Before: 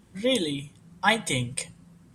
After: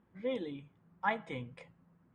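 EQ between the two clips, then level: Chebyshev low-pass 1400 Hz, order 2; low shelf 220 Hz -8 dB; -8.0 dB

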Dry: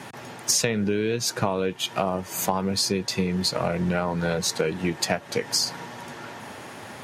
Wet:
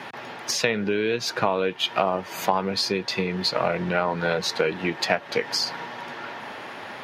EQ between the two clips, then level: air absorption 330 m; RIAA curve recording; +5.5 dB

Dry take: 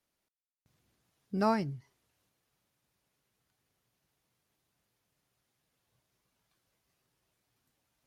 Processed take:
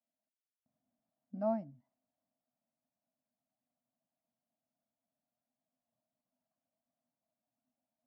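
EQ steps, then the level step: double band-pass 400 Hz, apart 1.4 oct; 0.0 dB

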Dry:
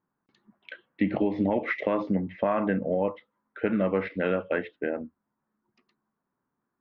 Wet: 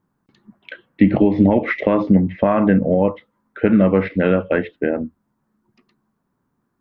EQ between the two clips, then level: low shelf 240 Hz +11 dB; +7.0 dB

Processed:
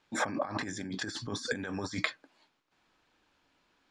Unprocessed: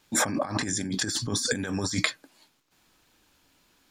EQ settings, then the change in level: tape spacing loss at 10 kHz 22 dB; low shelf 350 Hz -10 dB; 0.0 dB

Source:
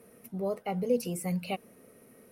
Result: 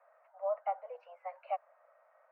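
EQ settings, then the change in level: steep high-pass 580 Hz 96 dB/oct; LPF 1500 Hz 24 dB/oct; +2.0 dB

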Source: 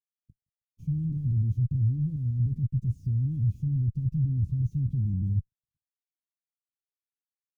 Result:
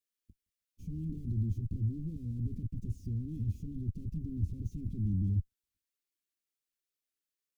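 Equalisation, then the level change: fixed phaser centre 330 Hz, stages 4; +4.5 dB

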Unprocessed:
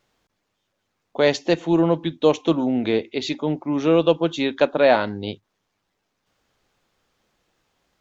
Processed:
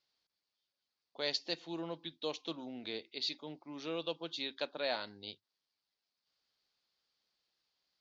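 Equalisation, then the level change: band-pass 4600 Hz, Q 4.9; tilt -4 dB/oct; +7.0 dB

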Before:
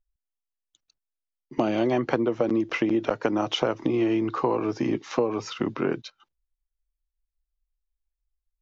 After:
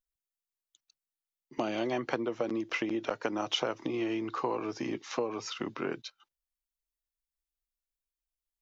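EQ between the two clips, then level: tilt +2 dB/oct; -6.0 dB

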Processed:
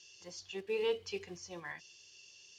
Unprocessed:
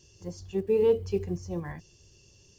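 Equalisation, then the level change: band-pass 3200 Hz, Q 1.1; +7.0 dB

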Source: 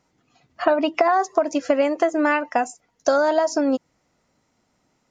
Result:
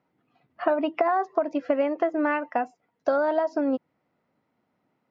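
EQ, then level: HPF 130 Hz 12 dB/oct; air absorption 370 m; -3.5 dB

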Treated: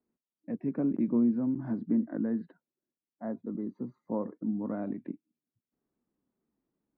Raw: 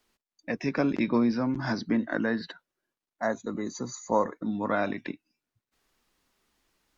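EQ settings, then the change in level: band-pass 230 Hz, Q 1.3; air absorption 360 m; 0.0 dB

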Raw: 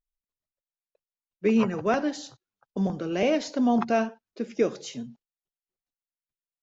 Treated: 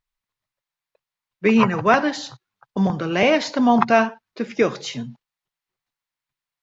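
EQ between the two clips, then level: graphic EQ 125/1000/2000/4000 Hz +10/+10/+8/+6 dB; +2.5 dB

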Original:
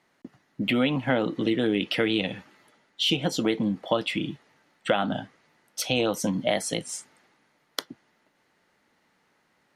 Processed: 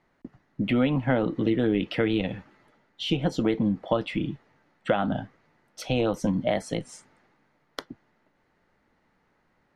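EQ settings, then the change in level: RIAA curve playback; bell 140 Hz -7 dB 3 oct; bell 3100 Hz -2.5 dB; 0.0 dB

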